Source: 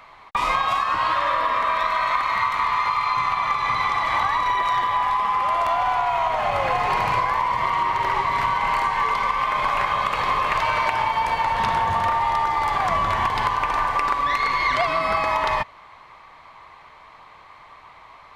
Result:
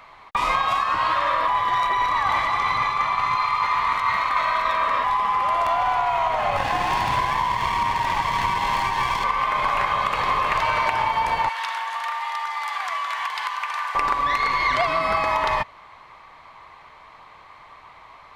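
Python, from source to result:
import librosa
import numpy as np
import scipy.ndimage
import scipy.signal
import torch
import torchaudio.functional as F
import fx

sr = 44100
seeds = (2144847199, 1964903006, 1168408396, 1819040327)

y = fx.lower_of_two(x, sr, delay_ms=1.1, at=(6.57, 9.24))
y = fx.highpass(y, sr, hz=1400.0, slope=12, at=(11.49, 13.95))
y = fx.edit(y, sr, fx.reverse_span(start_s=1.48, length_s=3.56), tone=tone)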